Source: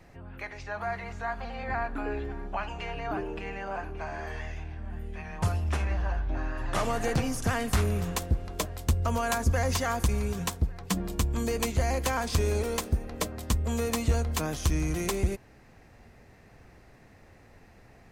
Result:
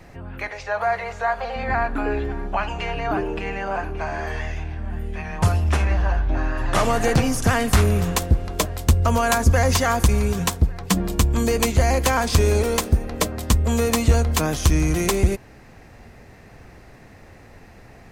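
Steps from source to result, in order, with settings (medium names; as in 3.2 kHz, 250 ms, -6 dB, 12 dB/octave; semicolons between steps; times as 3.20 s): 0.48–1.56 s: resonant low shelf 390 Hz -7 dB, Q 3; trim +9 dB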